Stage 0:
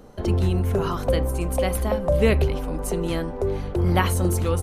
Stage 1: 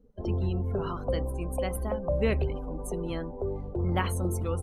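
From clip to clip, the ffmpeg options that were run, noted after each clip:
-af "afftdn=nr=23:nf=-36,volume=-7.5dB"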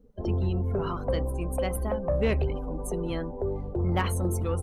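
-af "aeval=exprs='0.2*(cos(1*acos(clip(val(0)/0.2,-1,1)))-cos(1*PI/2))+0.0141*(cos(5*acos(clip(val(0)/0.2,-1,1)))-cos(5*PI/2))':c=same"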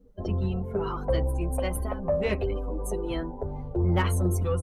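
-filter_complex "[0:a]asplit=2[a][b];[b]adelay=8.1,afreqshift=0.46[c];[a][c]amix=inputs=2:normalize=1,volume=3.5dB"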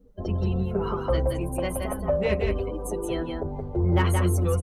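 -af "aecho=1:1:174:0.631,volume=1dB"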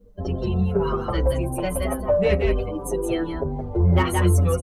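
-filter_complex "[0:a]asplit=2[a][b];[b]adelay=6.1,afreqshift=-1.9[c];[a][c]amix=inputs=2:normalize=1,volume=6.5dB"

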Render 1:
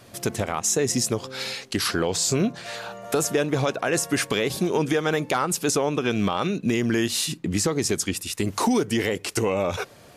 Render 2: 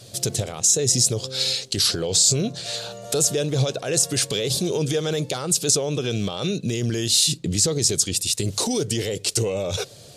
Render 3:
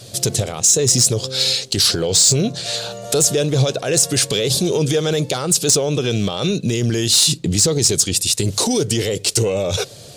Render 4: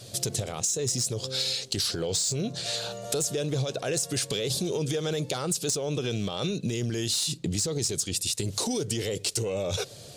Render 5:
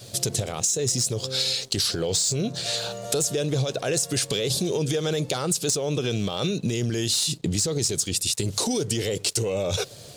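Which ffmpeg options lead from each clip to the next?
-af "alimiter=limit=-17dB:level=0:latency=1:release=25,equalizer=f=125:t=o:w=1:g=9,equalizer=f=250:t=o:w=1:g=-5,equalizer=f=500:t=o:w=1:g=6,equalizer=f=1k:t=o:w=1:g=-8,equalizer=f=2k:t=o:w=1:g=-6,equalizer=f=4k:t=o:w=1:g=10,equalizer=f=8k:t=o:w=1:g=9"
-af "asoftclip=type=tanh:threshold=-11dB,volume=6dB"
-af "acompressor=threshold=-19dB:ratio=6,volume=-6.5dB"
-af "aeval=exprs='sgn(val(0))*max(abs(val(0))-0.0015,0)':c=same,volume=4dB"

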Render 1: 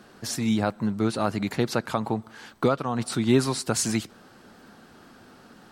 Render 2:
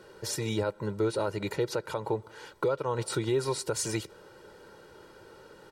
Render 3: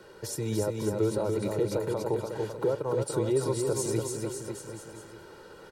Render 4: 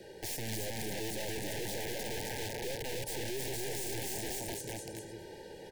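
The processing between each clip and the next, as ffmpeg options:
-af "equalizer=f=460:w=0.96:g=6,aecho=1:1:2.1:0.83,alimiter=limit=-14dB:level=0:latency=1:release=207,volume=-5dB"
-filter_complex "[0:a]acrossover=split=300|840|6700[a][b][c][d];[c]acompressor=threshold=-49dB:ratio=5[e];[a][b][e][d]amix=inputs=4:normalize=0,aecho=1:1:290|551|785.9|997.3|1188:0.631|0.398|0.251|0.158|0.1,volume=1dB"
-af "aeval=exprs='(tanh(35.5*val(0)+0.45)-tanh(0.45))/35.5':c=same,aeval=exprs='(mod(59.6*val(0)+1,2)-1)/59.6':c=same,asuperstop=centerf=1200:order=20:qfactor=1.9,volume=3dB"

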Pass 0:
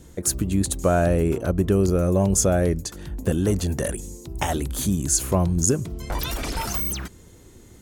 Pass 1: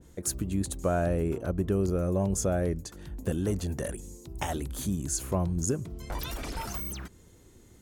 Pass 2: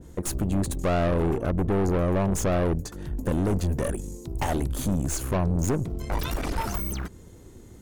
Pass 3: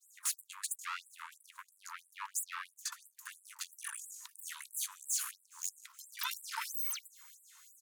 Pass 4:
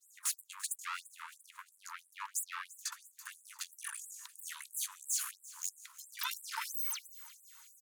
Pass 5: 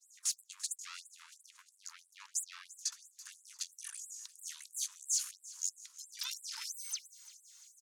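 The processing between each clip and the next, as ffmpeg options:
-af "adynamicequalizer=threshold=0.00794:dfrequency=2300:dqfactor=0.7:tfrequency=2300:tqfactor=0.7:attack=5:release=100:ratio=0.375:range=2:mode=cutabove:tftype=highshelf,volume=-7.5dB"
-filter_complex "[0:a]aeval=exprs='(tanh(39.8*val(0)+0.55)-tanh(0.55))/39.8':c=same,asplit=2[a][b];[b]adynamicsmooth=sensitivity=7:basefreq=1.7k,volume=-1.5dB[c];[a][c]amix=inputs=2:normalize=0,volume=6dB"
-af "alimiter=limit=-24dB:level=0:latency=1:release=11,aecho=1:1:421|842|1263:0.0631|0.0322|0.0164,afftfilt=real='re*gte(b*sr/1024,860*pow(7600/860,0.5+0.5*sin(2*PI*3*pts/sr)))':imag='im*gte(b*sr/1024,860*pow(7600/860,0.5+0.5*sin(2*PI*3*pts/sr)))':win_size=1024:overlap=0.75,volume=1.5dB"
-af "aecho=1:1:342|684|1026:0.119|0.0511|0.022"
-af "bandpass=f=5.6k:t=q:w=2:csg=0,volume=6dB"

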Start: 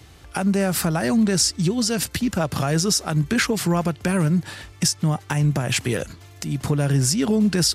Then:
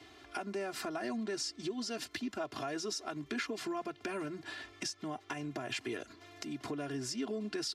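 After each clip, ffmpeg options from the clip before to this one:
-filter_complex "[0:a]acrossover=split=160 5900:gain=0.0794 1 0.178[a][b][c];[a][b][c]amix=inputs=3:normalize=0,aecho=1:1:2.9:0.93,acompressor=threshold=-36dB:ratio=2,volume=-7dB"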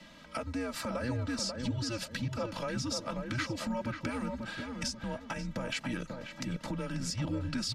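-filter_complex "[0:a]afreqshift=-120,asplit=2[a][b];[b]adelay=538,lowpass=f=1.3k:p=1,volume=-4dB,asplit=2[c][d];[d]adelay=538,lowpass=f=1.3k:p=1,volume=0.36,asplit=2[e][f];[f]adelay=538,lowpass=f=1.3k:p=1,volume=0.36,asplit=2[g][h];[h]adelay=538,lowpass=f=1.3k:p=1,volume=0.36,asplit=2[i][j];[j]adelay=538,lowpass=f=1.3k:p=1,volume=0.36[k];[c][e][g][i][k]amix=inputs=5:normalize=0[l];[a][l]amix=inputs=2:normalize=0,volume=2.5dB"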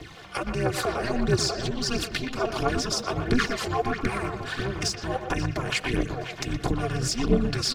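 -filter_complex "[0:a]aphaser=in_gain=1:out_gain=1:delay=3:decay=0.67:speed=1.5:type=triangular,asplit=2[a][b];[b]adelay=120,highpass=300,lowpass=3.4k,asoftclip=type=hard:threshold=-25.5dB,volume=-7dB[c];[a][c]amix=inputs=2:normalize=0,aeval=exprs='val(0)*sin(2*PI*130*n/s)':c=same,volume=9dB"

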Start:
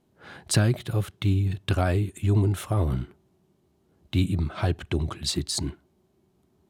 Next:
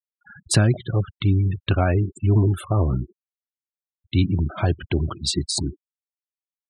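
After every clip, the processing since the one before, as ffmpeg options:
-af "afftfilt=real='re*gte(hypot(re,im),0.0224)':imag='im*gte(hypot(re,im),0.0224)':win_size=1024:overlap=0.75,volume=4dB"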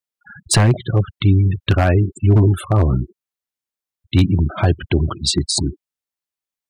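-af "aeval=exprs='0.299*(abs(mod(val(0)/0.299+3,4)-2)-1)':c=same,volume=5.5dB"

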